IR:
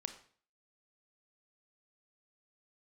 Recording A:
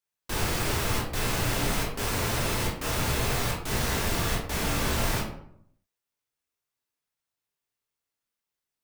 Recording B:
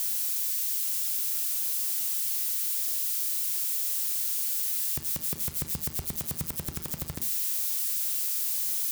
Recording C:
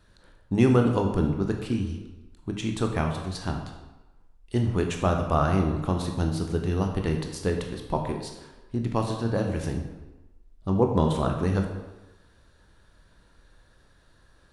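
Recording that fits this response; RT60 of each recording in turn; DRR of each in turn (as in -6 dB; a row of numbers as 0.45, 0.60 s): B; 0.70, 0.45, 1.1 s; -4.0, 7.5, 2.5 dB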